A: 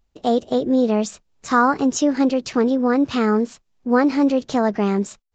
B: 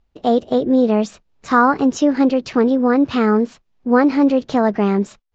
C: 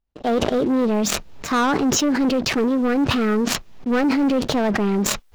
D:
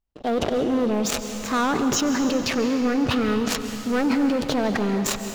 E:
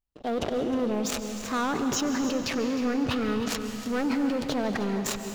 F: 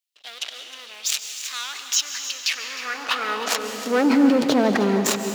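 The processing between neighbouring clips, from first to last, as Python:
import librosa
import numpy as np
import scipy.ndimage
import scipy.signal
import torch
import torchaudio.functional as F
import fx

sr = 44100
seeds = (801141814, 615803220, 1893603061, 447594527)

y1 = scipy.signal.sosfilt(scipy.signal.bessel(2, 3700.0, 'lowpass', norm='mag', fs=sr, output='sos'), x)
y1 = F.gain(torch.from_numpy(y1), 3.0).numpy()
y2 = fx.leveller(y1, sr, passes=3)
y2 = fx.sustainer(y2, sr, db_per_s=22.0)
y2 = F.gain(torch.from_numpy(y2), -11.5).numpy()
y3 = y2 + 10.0 ** (-21.5 / 20.0) * np.pad(y2, (int(95 * sr / 1000.0), 0))[:len(y2)]
y3 = fx.rev_plate(y3, sr, seeds[0], rt60_s=2.8, hf_ratio=0.95, predelay_ms=120, drr_db=7.0)
y3 = F.gain(torch.from_numpy(y3), -3.5).numpy()
y4 = y3 + 10.0 ** (-13.5 / 20.0) * np.pad(y3, (int(311 * sr / 1000.0), 0))[:len(y3)]
y4 = F.gain(torch.from_numpy(y4), -5.5).numpy()
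y5 = fx.filter_sweep_highpass(y4, sr, from_hz=3000.0, to_hz=250.0, start_s=2.39, end_s=4.24, q=1.2)
y5 = F.gain(torch.from_numpy(y5), 8.5).numpy()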